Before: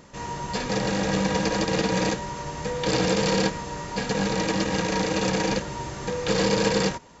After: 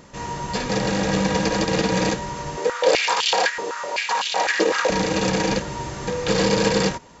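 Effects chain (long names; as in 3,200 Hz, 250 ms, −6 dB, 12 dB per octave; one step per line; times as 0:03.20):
0:02.57–0:04.90: high-pass on a step sequencer 7.9 Hz 410–3,100 Hz
level +3 dB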